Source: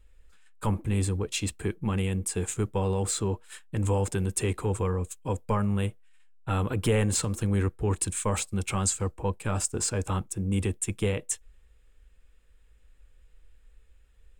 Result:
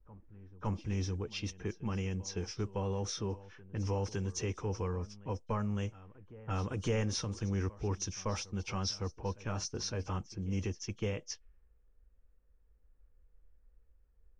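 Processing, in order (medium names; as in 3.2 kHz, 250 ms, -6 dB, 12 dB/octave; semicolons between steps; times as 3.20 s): knee-point frequency compression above 2.8 kHz 1.5:1; vibrato 0.75 Hz 33 cents; on a send: reverse echo 560 ms -19.5 dB; on the sum: level-controlled noise filter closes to 910 Hz, open at -24 dBFS; trim -8 dB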